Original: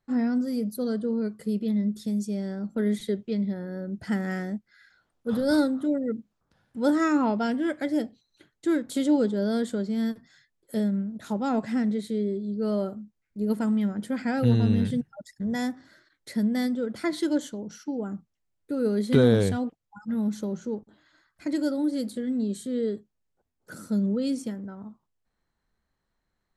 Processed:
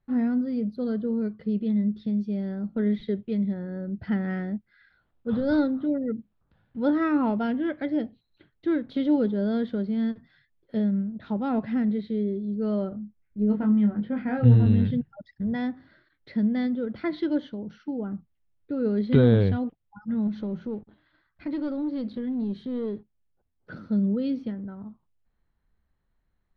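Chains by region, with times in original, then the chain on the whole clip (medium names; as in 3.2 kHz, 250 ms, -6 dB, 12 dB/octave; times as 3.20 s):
12.89–14.66 s: distance through air 260 m + doubling 24 ms -4.5 dB
20.27–23.79 s: waveshaping leveller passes 1 + compression 1.5:1, threshold -35 dBFS
whole clip: inverse Chebyshev low-pass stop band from 7.1 kHz, stop band 40 dB; bass shelf 150 Hz +11 dB; trim -2.5 dB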